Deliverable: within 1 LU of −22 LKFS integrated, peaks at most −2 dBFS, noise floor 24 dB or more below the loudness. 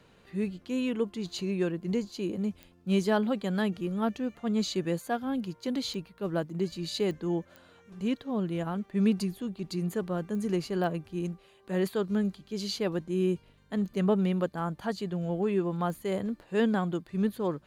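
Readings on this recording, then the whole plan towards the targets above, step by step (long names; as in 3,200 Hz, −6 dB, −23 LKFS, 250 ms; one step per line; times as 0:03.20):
number of clicks 7; integrated loudness −31.0 LKFS; sample peak −14.0 dBFS; target loudness −22.0 LKFS
→ click removal
level +9 dB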